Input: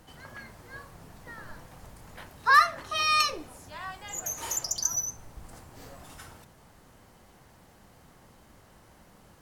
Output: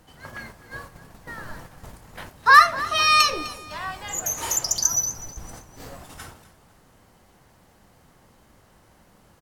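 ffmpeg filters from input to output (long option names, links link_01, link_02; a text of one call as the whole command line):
ffmpeg -i in.wav -filter_complex "[0:a]agate=range=-7dB:threshold=-47dB:ratio=16:detection=peak,asplit=2[link_01][link_02];[link_02]aecho=0:1:253|506|759:0.141|0.048|0.0163[link_03];[link_01][link_03]amix=inputs=2:normalize=0,volume=7dB" out.wav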